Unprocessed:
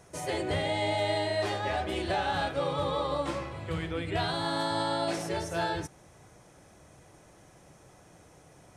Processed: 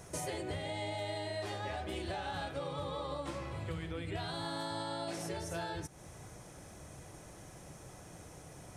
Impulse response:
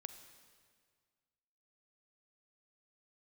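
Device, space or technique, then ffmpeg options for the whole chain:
ASMR close-microphone chain: -af "lowshelf=frequency=180:gain=5,acompressor=threshold=-40dB:ratio=5,highshelf=frequency=6400:gain=6.5,volume=2dB"

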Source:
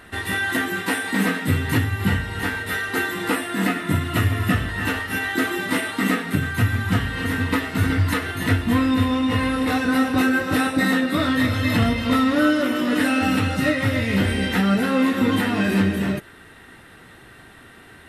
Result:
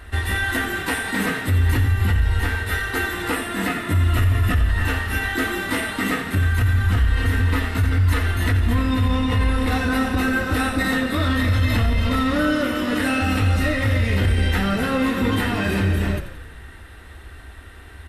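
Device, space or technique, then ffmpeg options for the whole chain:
car stereo with a boomy subwoofer: -filter_complex "[0:a]lowshelf=frequency=100:width_type=q:width=3:gain=12.5,alimiter=limit=-12dB:level=0:latency=1:release=25,asplit=8[link_01][link_02][link_03][link_04][link_05][link_06][link_07][link_08];[link_02]adelay=86,afreqshift=-35,volume=-11.5dB[link_09];[link_03]adelay=172,afreqshift=-70,volume=-15.9dB[link_10];[link_04]adelay=258,afreqshift=-105,volume=-20.4dB[link_11];[link_05]adelay=344,afreqshift=-140,volume=-24.8dB[link_12];[link_06]adelay=430,afreqshift=-175,volume=-29.2dB[link_13];[link_07]adelay=516,afreqshift=-210,volume=-33.7dB[link_14];[link_08]adelay=602,afreqshift=-245,volume=-38.1dB[link_15];[link_01][link_09][link_10][link_11][link_12][link_13][link_14][link_15]amix=inputs=8:normalize=0"

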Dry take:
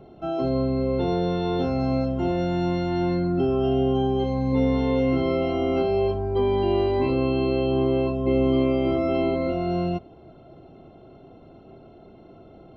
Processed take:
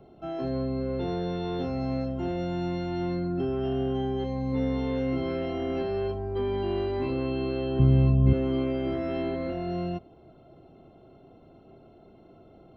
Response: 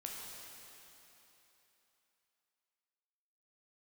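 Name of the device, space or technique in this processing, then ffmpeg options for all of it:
one-band saturation: -filter_complex "[0:a]asettb=1/sr,asplit=3[link_01][link_02][link_03];[link_01]atrim=end=7.794[link_04];[link_02]atrim=start=7.79:end=8.33,asetpts=PTS-STARTPTS,afade=type=in:duration=0.004:curve=qsin,afade=type=out:start_time=0.536:duration=0.004:curve=qsin,lowshelf=frequency=240:width_type=q:width=1.5:gain=14[link_05];[link_03]atrim=start=8.326[link_06];[link_04][link_05]acrossfade=duration=0.004:curve1=hsin:curve2=qsin[link_07];[link_07][link_06]acrossfade=duration=0.004:curve1=qsin:curve2=hsin,acrossover=split=370|2300[link_08][link_09][link_10];[link_09]asoftclip=type=tanh:threshold=-24.5dB[link_11];[link_08][link_11][link_10]amix=inputs=3:normalize=0,volume=-5.5dB"

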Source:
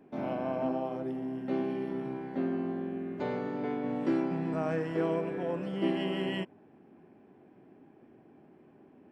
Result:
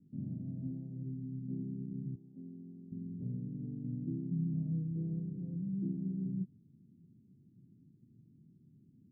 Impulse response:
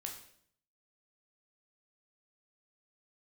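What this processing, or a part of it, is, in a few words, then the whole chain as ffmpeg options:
the neighbour's flat through the wall: -filter_complex "[0:a]asettb=1/sr,asplit=3[link_01][link_02][link_03];[link_01]atrim=end=2.154[link_04];[link_02]atrim=start=2.15:end=2.92,asetpts=PTS-STARTPTS,afade=type=in:duration=0.004:curve=qsin,afade=type=out:start_time=0.766:duration=0.004:curve=qsin,highpass=frequency=660:poles=1[link_05];[link_03]atrim=start=2.916[link_06];[link_04][link_05]acrossfade=duration=0.004:curve1=hsin:curve2=qsin[link_07];[link_07][link_06]acrossfade=duration=0.004:curve1=qsin:curve2=hsin,lowpass=frequency=180:width=0.5412,lowpass=frequency=180:width=1.3066,lowshelf=frequency=82:gain=-8.5,equalizer=frequency=120:width_type=o:width=0.63:gain=5.5,volume=5dB"

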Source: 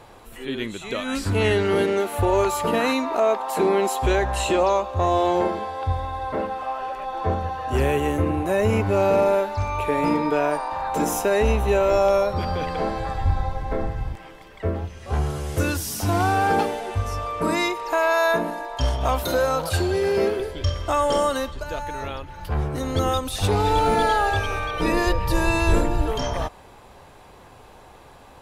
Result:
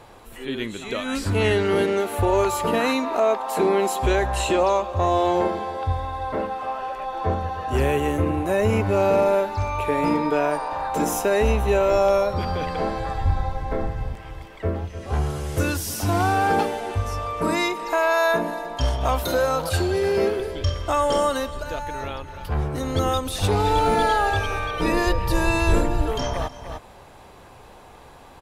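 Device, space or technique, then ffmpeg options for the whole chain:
ducked delay: -filter_complex "[0:a]asplit=3[link_01][link_02][link_03];[link_02]adelay=300,volume=-3.5dB[link_04];[link_03]apad=whole_len=1266292[link_05];[link_04][link_05]sidechaincompress=threshold=-45dB:ratio=3:attack=6.2:release=211[link_06];[link_01][link_06]amix=inputs=2:normalize=0"

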